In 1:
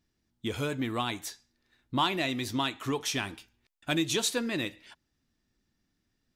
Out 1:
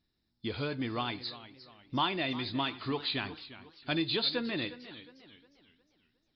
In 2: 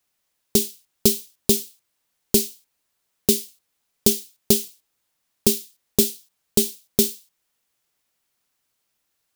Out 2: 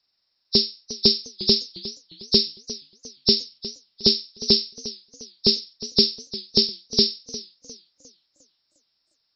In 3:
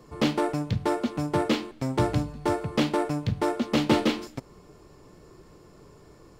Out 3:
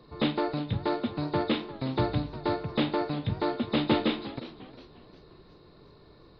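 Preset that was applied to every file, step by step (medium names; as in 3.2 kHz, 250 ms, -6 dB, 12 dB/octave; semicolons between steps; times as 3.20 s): knee-point frequency compression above 3.5 kHz 4:1; modulated delay 355 ms, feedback 39%, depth 127 cents, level -15.5 dB; trim -3 dB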